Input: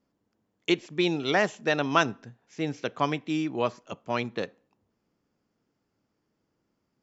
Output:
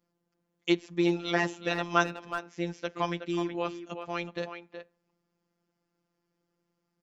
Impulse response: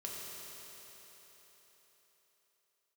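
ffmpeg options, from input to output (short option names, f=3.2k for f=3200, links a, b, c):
-filter_complex "[0:a]asplit=2[a][b];[b]adelay=370,highpass=300,lowpass=3.4k,asoftclip=type=hard:threshold=-15dB,volume=-8dB[c];[a][c]amix=inputs=2:normalize=0,afftfilt=real='hypot(re,im)*cos(PI*b)':imag='0':win_size=1024:overlap=0.75"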